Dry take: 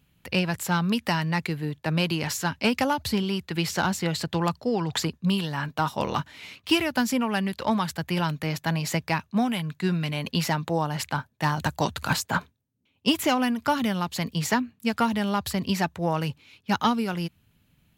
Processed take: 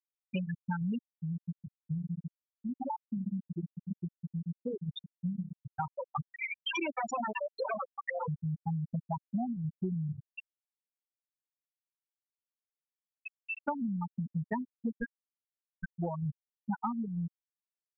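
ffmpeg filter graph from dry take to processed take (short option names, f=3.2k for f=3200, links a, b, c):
-filter_complex "[0:a]asettb=1/sr,asplit=3[a][b][c];[a]atrim=end=1.004[d];[b]atrim=start=1:end=5.54,asetpts=PTS-STARTPTS,afade=t=in:d=0.004:c=qsin,afade=t=out:st=4.536:d=0.004:c=qsin,highshelf=f=3.4k:g=12,acompressor=threshold=-28dB:ratio=2:attack=3.2:release=140:knee=1:detection=peak,asplit=2[e][f];[f]adelay=129,lowpass=f=3.3k:p=1,volume=-8.5dB,asplit=2[g][h];[h]adelay=129,lowpass=f=3.3k:p=1,volume=0.55,asplit=2[i][j];[j]adelay=129,lowpass=f=3.3k:p=1,volume=0.55,asplit=2[k][l];[l]adelay=129,lowpass=f=3.3k:p=1,volume=0.55,asplit=2[m][n];[n]adelay=129,lowpass=f=3.3k:p=1,volume=0.55,asplit=2[o][p];[p]adelay=129,lowpass=f=3.3k:p=1,volume=0.55,asplit=2[q][r];[r]adelay=129,lowpass=f=3.3k:p=1,volume=0.55[s];[e][g][i][k][m][o][q][s]amix=inputs=8:normalize=0,atrim=end_sample=200214[t];[c]atrim=start=5.536[u];[d][t]acrossfade=d=0.004:c1=hsin:c2=qsin[v];[v][u]acrossfade=d=0.004:c1=qsin:c2=hsin,asettb=1/sr,asplit=3[w][x][y];[w]atrim=end=6.334[z];[x]atrim=start=6.33:end=8.28,asetpts=PTS-STARTPTS,afade=t=in:d=0.004:c=qsin,afade=t=out:st=1.946:d=0.004:c=qsin,aeval=exprs='0.282*sin(PI/2*5.62*val(0)/0.282)':c=same,acompressor=threshold=-19dB:ratio=5:attack=3.2:release=140:knee=1:detection=peak,highpass=380[aa];[y]atrim=start=8.276[ab];[z][aa]acrossfade=d=0.004:c1=hsin:c2=qsin[ac];[ac][ab]acrossfade=d=0.004:c1=qsin:c2=hsin,asettb=1/sr,asplit=3[ad][ae][af];[ad]atrim=end=10.234[ag];[ae]atrim=start=10.23:end=13.6,asetpts=PTS-STARTPTS,afade=t=in:d=0.004:c=qsin,afade=t=out:st=3.366:d=0.004:c=qsin,bandreject=f=50:t=h:w=6,bandreject=f=100:t=h:w=6,bandreject=f=150:t=h:w=6,bandreject=f=200:t=h:w=6,bandreject=f=250:t=h:w=6,bandreject=f=300:t=h:w=6,bandreject=f=350:t=h:w=6,acompressor=threshold=-30dB:ratio=5:attack=3.2:release=140:knee=1:detection=peak,lowpass=f=2.5k:t=q:w=0.5098,lowpass=f=2.5k:t=q:w=0.6013,lowpass=f=2.5k:t=q:w=0.9,lowpass=f=2.5k:t=q:w=2.563,afreqshift=-2900[ah];[af]atrim=start=13.596[ai];[ag][ah]acrossfade=d=0.004:c1=hsin:c2=qsin[aj];[aj][ai]acrossfade=d=0.004:c1=qsin:c2=hsin,asettb=1/sr,asplit=3[ak][al][am];[ak]atrim=end=14.914[an];[al]atrim=start=14.91:end=15.96,asetpts=PTS-STARTPTS,afade=t=in:d=0.004:c=qsin,afade=t=out:st=1.046:d=0.004:c=qsin,highpass=360,lowpass=3k,aeval=exprs='val(0)*sin(2*PI*690*n/s)':c=same[ao];[am]atrim=start=15.956[ap];[an][ao]acrossfade=d=0.004:c1=hsin:c2=qsin[aq];[aq][ap]acrossfade=d=0.004:c1=qsin:c2=hsin,afftfilt=real='re*gte(hypot(re,im),0.316)':imag='im*gte(hypot(re,im),0.316)':win_size=1024:overlap=0.75,acompressor=threshold=-31dB:ratio=6"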